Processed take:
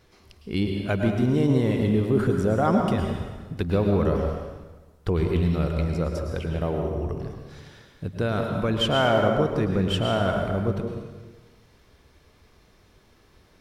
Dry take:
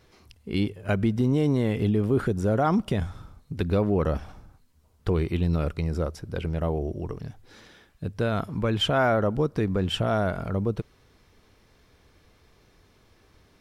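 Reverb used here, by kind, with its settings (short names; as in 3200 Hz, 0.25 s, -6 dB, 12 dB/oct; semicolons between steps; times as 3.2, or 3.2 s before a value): plate-style reverb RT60 1.3 s, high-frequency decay 0.9×, pre-delay 95 ms, DRR 2.5 dB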